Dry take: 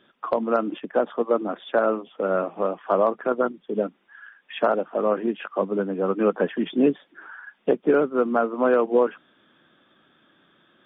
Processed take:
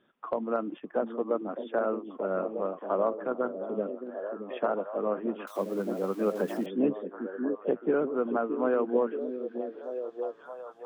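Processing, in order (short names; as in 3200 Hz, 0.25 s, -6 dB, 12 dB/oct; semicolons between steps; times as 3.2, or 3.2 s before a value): 5.47–6.66 switching spikes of -23.5 dBFS; high shelf 2800 Hz -11.5 dB; delay with a stepping band-pass 0.623 s, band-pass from 290 Hz, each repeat 0.7 oct, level -4.5 dB; gain -7 dB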